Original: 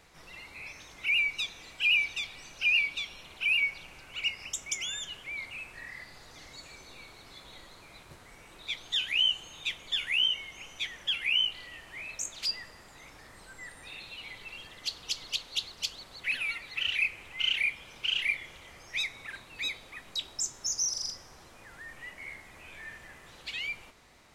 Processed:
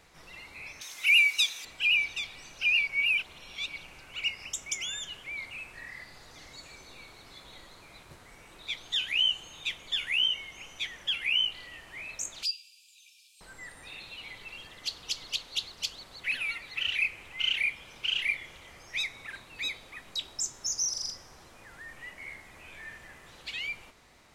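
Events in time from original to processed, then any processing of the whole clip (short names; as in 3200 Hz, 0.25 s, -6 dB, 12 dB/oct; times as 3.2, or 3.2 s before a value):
0.81–1.65 tilt +4.5 dB/oct
2.87–3.76 reverse
12.43–13.41 brick-wall FIR high-pass 2300 Hz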